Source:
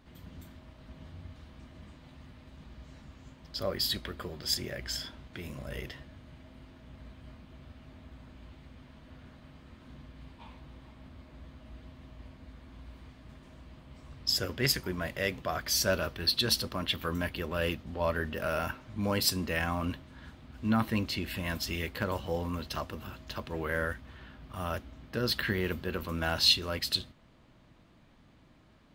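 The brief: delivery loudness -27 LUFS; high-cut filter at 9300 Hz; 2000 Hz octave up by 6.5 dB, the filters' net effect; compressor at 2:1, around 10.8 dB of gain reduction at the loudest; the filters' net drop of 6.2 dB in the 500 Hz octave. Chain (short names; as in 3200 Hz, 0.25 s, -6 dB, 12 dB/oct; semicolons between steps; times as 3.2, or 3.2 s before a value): LPF 9300 Hz; bell 500 Hz -8.5 dB; bell 2000 Hz +9 dB; compressor 2:1, threshold -37 dBFS; gain +10 dB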